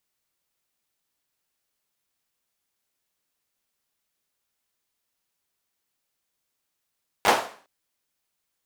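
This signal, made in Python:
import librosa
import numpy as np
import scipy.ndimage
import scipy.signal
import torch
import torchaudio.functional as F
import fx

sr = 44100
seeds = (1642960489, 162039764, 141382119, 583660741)

y = fx.drum_clap(sr, seeds[0], length_s=0.41, bursts=4, spacing_ms=10, hz=740.0, decay_s=0.45)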